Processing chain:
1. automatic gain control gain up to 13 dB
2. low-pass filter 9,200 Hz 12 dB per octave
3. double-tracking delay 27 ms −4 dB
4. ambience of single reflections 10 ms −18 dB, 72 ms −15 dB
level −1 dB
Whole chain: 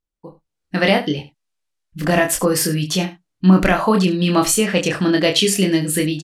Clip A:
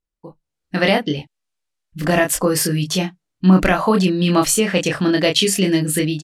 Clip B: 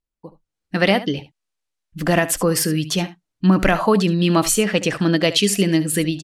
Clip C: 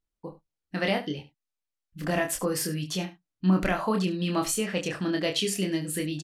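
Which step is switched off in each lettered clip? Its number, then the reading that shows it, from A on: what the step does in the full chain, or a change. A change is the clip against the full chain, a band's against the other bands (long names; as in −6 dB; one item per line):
4, echo-to-direct ratio −13.0 dB to none audible
3, change in integrated loudness −1.5 LU
1, change in momentary loudness spread +5 LU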